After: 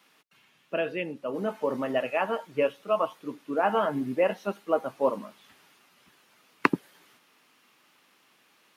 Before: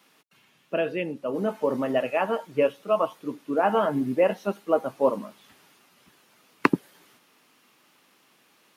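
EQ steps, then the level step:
tilt shelving filter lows −4.5 dB, about 1,200 Hz
high-shelf EQ 3,200 Hz −8.5 dB
0.0 dB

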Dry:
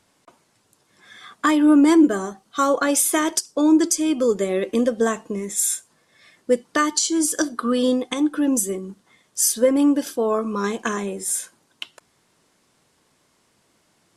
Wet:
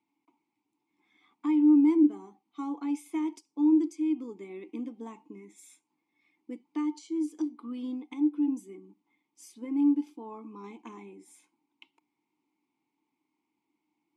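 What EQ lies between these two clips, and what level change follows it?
formant filter u
high-shelf EQ 7,200 Hz +8.5 dB
−5.0 dB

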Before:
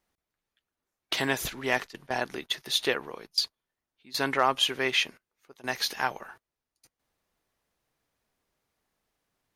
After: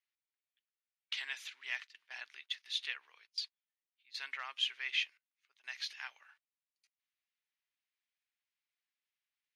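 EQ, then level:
four-pole ladder band-pass 3,000 Hz, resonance 30%
+1.0 dB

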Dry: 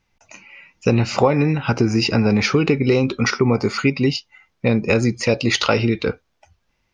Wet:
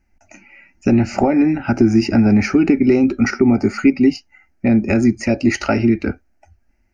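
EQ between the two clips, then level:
low-shelf EQ 420 Hz +11 dB
phaser with its sweep stopped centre 710 Hz, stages 8
0.0 dB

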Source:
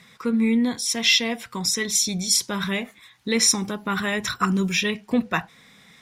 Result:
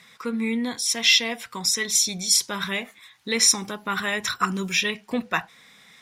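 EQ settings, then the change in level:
low-shelf EQ 390 Hz −9.5 dB
+1.0 dB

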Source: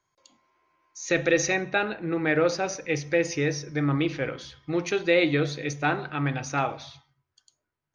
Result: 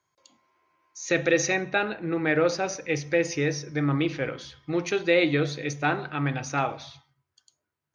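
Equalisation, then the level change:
high-pass filter 57 Hz
0.0 dB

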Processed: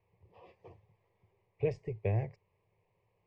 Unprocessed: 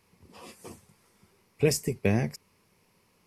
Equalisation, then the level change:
transistor ladder low-pass 2,500 Hz, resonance 25%
parametric band 110 Hz +9 dB 0.34 octaves
phaser with its sweep stopped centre 590 Hz, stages 4
0.0 dB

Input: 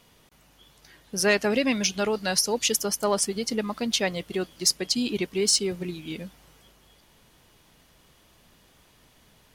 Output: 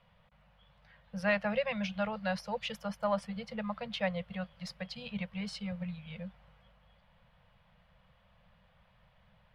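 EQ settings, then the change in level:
elliptic band-stop filter 200–510 Hz, stop band 40 dB
high-frequency loss of the air 450 metres
−2.5 dB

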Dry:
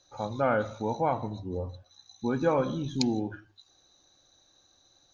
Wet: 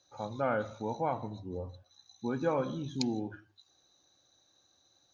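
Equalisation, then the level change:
high-pass filter 70 Hz
−5.0 dB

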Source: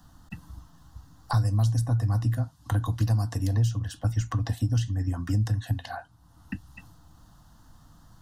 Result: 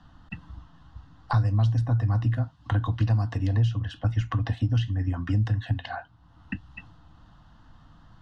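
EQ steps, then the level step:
low-pass with resonance 2,800 Hz, resonance Q 1.7
+1.0 dB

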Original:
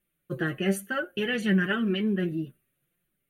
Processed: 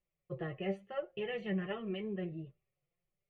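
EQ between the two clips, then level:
low-pass with resonance 1,900 Hz, resonance Q 1.6
high-frequency loss of the air 55 metres
phaser with its sweep stopped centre 640 Hz, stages 4
−4.5 dB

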